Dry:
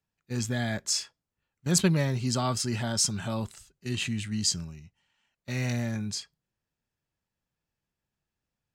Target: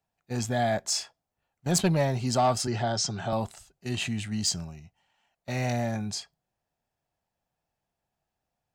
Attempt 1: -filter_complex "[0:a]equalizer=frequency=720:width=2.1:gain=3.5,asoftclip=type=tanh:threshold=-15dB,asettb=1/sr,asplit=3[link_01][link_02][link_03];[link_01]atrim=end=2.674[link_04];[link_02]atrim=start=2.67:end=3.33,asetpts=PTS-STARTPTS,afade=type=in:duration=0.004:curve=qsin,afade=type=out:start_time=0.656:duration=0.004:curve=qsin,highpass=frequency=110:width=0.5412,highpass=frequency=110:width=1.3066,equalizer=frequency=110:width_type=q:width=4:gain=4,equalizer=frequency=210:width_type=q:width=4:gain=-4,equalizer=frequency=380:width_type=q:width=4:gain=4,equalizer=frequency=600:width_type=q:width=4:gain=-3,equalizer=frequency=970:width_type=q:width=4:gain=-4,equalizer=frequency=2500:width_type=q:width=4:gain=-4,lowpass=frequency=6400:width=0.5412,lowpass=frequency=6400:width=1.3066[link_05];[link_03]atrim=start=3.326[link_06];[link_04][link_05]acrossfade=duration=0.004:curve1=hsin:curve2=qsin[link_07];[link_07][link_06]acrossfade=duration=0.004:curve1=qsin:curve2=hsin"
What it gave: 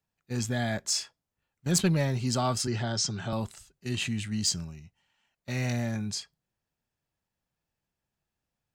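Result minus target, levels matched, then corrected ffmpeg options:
1,000 Hz band −6.0 dB
-filter_complex "[0:a]equalizer=frequency=720:width=2.1:gain=14,asoftclip=type=tanh:threshold=-15dB,asettb=1/sr,asplit=3[link_01][link_02][link_03];[link_01]atrim=end=2.674[link_04];[link_02]atrim=start=2.67:end=3.33,asetpts=PTS-STARTPTS,afade=type=in:duration=0.004:curve=qsin,afade=type=out:start_time=0.656:duration=0.004:curve=qsin,highpass=frequency=110:width=0.5412,highpass=frequency=110:width=1.3066,equalizer=frequency=110:width_type=q:width=4:gain=4,equalizer=frequency=210:width_type=q:width=4:gain=-4,equalizer=frequency=380:width_type=q:width=4:gain=4,equalizer=frequency=600:width_type=q:width=4:gain=-3,equalizer=frequency=970:width_type=q:width=4:gain=-4,equalizer=frequency=2500:width_type=q:width=4:gain=-4,lowpass=frequency=6400:width=0.5412,lowpass=frequency=6400:width=1.3066[link_05];[link_03]atrim=start=3.326[link_06];[link_04][link_05]acrossfade=duration=0.004:curve1=hsin:curve2=qsin[link_07];[link_07][link_06]acrossfade=duration=0.004:curve1=qsin:curve2=hsin"

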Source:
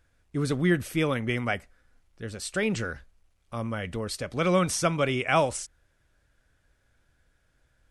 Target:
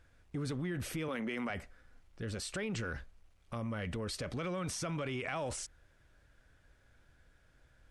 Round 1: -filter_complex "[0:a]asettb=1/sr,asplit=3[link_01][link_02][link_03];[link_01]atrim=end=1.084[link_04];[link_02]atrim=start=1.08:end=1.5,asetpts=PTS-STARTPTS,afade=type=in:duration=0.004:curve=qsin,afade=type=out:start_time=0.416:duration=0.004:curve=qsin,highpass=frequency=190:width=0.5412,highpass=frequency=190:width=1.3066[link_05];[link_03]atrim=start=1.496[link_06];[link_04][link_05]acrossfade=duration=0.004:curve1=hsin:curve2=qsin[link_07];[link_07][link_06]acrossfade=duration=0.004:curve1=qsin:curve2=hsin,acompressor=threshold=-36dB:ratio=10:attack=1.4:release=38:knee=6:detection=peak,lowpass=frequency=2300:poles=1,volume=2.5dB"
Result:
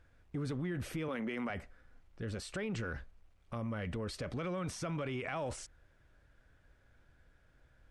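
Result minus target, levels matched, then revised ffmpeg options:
4,000 Hz band −3.5 dB
-filter_complex "[0:a]asettb=1/sr,asplit=3[link_01][link_02][link_03];[link_01]atrim=end=1.084[link_04];[link_02]atrim=start=1.08:end=1.5,asetpts=PTS-STARTPTS,afade=type=in:duration=0.004:curve=qsin,afade=type=out:start_time=0.416:duration=0.004:curve=qsin,highpass=frequency=190:width=0.5412,highpass=frequency=190:width=1.3066[link_05];[link_03]atrim=start=1.496[link_06];[link_04][link_05]acrossfade=duration=0.004:curve1=hsin:curve2=qsin[link_07];[link_07][link_06]acrossfade=duration=0.004:curve1=qsin:curve2=hsin,acompressor=threshold=-36dB:ratio=10:attack=1.4:release=38:knee=6:detection=peak,lowpass=frequency=5600:poles=1,volume=2.5dB"

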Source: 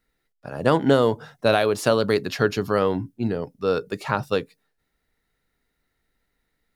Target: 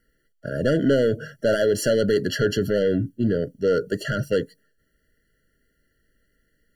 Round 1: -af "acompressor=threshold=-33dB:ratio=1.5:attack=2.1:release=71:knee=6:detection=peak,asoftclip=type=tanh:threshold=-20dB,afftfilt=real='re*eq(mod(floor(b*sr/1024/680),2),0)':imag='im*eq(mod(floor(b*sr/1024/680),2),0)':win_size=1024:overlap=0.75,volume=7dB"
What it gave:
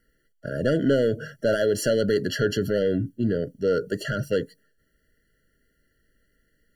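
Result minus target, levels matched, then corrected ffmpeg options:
downward compressor: peak gain reduction +3 dB
-af "acompressor=threshold=-23.5dB:ratio=1.5:attack=2.1:release=71:knee=6:detection=peak,asoftclip=type=tanh:threshold=-20dB,afftfilt=real='re*eq(mod(floor(b*sr/1024/680),2),0)':imag='im*eq(mod(floor(b*sr/1024/680),2),0)':win_size=1024:overlap=0.75,volume=7dB"

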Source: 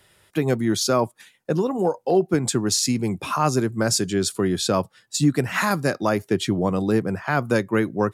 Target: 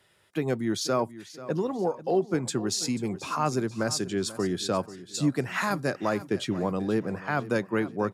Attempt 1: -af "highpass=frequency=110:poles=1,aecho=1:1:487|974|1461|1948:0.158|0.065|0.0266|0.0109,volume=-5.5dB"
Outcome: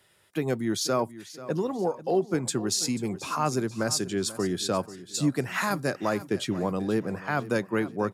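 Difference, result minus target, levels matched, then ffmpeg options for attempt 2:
8,000 Hz band +2.5 dB
-af "highpass=frequency=110:poles=1,highshelf=frequency=8600:gain=-8,aecho=1:1:487|974|1461|1948:0.158|0.065|0.0266|0.0109,volume=-5.5dB"

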